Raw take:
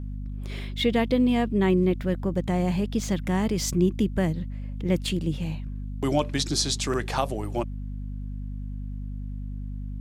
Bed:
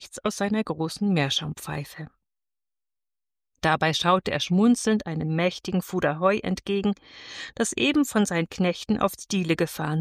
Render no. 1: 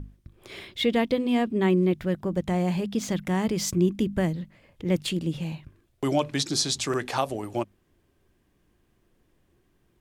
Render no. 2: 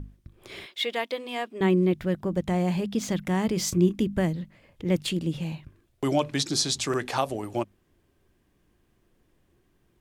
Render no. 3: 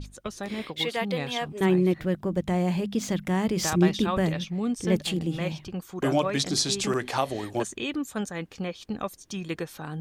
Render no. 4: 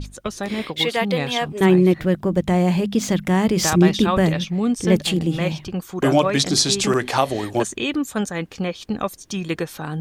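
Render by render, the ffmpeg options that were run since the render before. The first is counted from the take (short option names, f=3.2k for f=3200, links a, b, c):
-af "bandreject=f=50:t=h:w=6,bandreject=f=100:t=h:w=6,bandreject=f=150:t=h:w=6,bandreject=f=200:t=h:w=6,bandreject=f=250:t=h:w=6"
-filter_complex "[0:a]asettb=1/sr,asplit=3[a][b][c];[a]atrim=end=0.664[d];[b]atrim=start=0.66:end=1.61,asetpts=PTS-STARTPTS,afade=t=in:d=0.004:c=qsin,afade=t=out:st=0.946:d=0.004:c=qsin,highpass=640[e];[c]atrim=start=1.606[f];[d][e]acrossfade=d=0.004:c1=hsin:c2=qsin[g];[g][f]acrossfade=d=0.004:c1=qsin:c2=hsin,asettb=1/sr,asplit=3[h][i][j];[h]atrim=end=3.544[k];[i]atrim=start=3.54:end=4,asetpts=PTS-STARTPTS,afade=t=in:d=0.004:c=qsin,afade=t=out:st=0.456:d=0.004:c=qsin,asplit=2[l][m];[m]adelay=28,volume=-11.5dB[n];[l][n]amix=inputs=2:normalize=0,atrim=end_sample=20286[o];[j]atrim=start=3.996[p];[k][o]acrossfade=d=0.004:c1=hsin:c2=qsin[q];[q][p]acrossfade=d=0.004:c1=qsin:c2=hsin"
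-filter_complex "[1:a]volume=-9dB[a];[0:a][a]amix=inputs=2:normalize=0"
-af "volume=7.5dB,alimiter=limit=-3dB:level=0:latency=1"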